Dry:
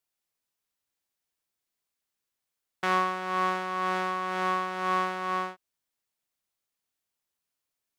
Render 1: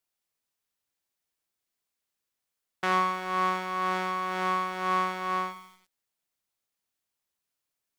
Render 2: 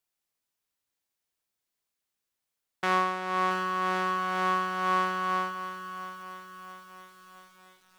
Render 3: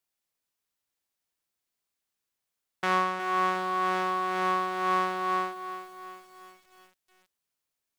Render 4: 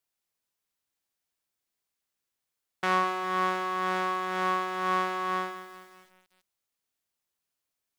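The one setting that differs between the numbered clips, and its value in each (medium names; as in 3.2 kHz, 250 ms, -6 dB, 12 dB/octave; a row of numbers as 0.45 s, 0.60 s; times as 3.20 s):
bit-crushed delay, time: 91 ms, 675 ms, 365 ms, 203 ms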